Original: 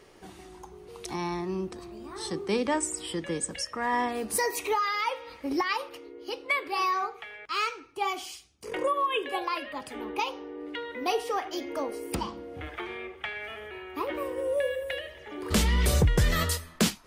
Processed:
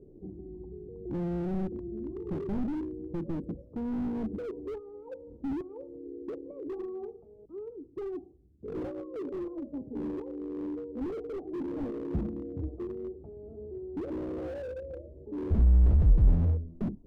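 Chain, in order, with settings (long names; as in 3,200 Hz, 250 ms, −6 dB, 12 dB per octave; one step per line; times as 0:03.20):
inverse Chebyshev low-pass filter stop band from 1,700 Hz, stop band 70 dB
slew-rate limiting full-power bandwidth 3.6 Hz
level +7 dB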